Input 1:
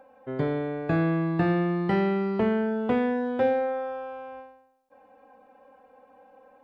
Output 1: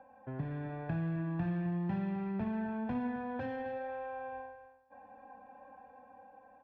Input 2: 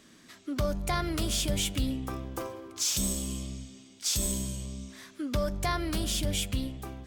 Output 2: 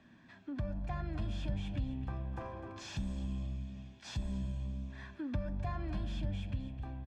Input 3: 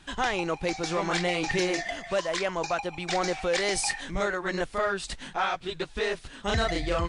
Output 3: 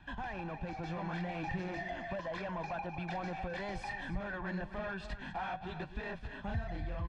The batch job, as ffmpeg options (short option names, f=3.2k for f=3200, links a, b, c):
-filter_complex "[0:a]acrossover=split=250[a][b];[b]asoftclip=type=tanh:threshold=-31dB[c];[a][c]amix=inputs=2:normalize=0,flanger=delay=7.8:depth=3.4:regen=88:speed=1:shape=triangular,highpass=f=45:p=1,dynaudnorm=f=200:g=9:m=4dB,lowpass=2.2k,lowshelf=f=160:g=4.5,aecho=1:1:1.2:0.58,asplit=2[d][e];[e]aecho=0:1:258:0.211[f];[d][f]amix=inputs=2:normalize=0,acompressor=threshold=-40dB:ratio=2"